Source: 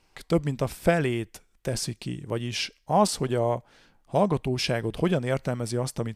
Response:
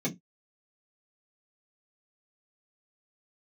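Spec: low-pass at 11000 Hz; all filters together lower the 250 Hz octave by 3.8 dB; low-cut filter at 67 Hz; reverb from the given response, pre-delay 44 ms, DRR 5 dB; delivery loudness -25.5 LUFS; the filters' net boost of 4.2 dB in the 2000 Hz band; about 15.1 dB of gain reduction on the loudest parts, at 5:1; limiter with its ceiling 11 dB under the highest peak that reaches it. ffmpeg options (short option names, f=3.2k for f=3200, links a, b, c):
-filter_complex "[0:a]highpass=67,lowpass=11k,equalizer=f=250:t=o:g=-6,equalizer=f=2k:t=o:g=5.5,acompressor=threshold=-33dB:ratio=5,alimiter=level_in=7.5dB:limit=-24dB:level=0:latency=1,volume=-7.5dB,asplit=2[a][b];[1:a]atrim=start_sample=2205,adelay=44[c];[b][c]afir=irnorm=-1:irlink=0,volume=-10.5dB[d];[a][d]amix=inputs=2:normalize=0,volume=12.5dB"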